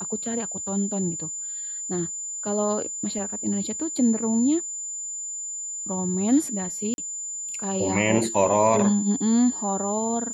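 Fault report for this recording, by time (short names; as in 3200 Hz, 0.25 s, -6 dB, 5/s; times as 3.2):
tone 7100 Hz -30 dBFS
6.94–6.98 gap 41 ms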